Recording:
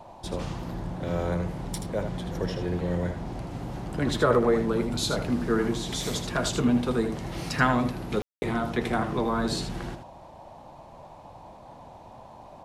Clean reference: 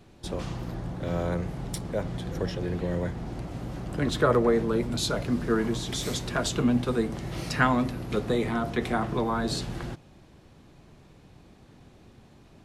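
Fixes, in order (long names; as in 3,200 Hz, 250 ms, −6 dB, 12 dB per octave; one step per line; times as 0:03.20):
ambience match 0:08.22–0:08.42
noise reduction from a noise print 6 dB
echo removal 79 ms −8.5 dB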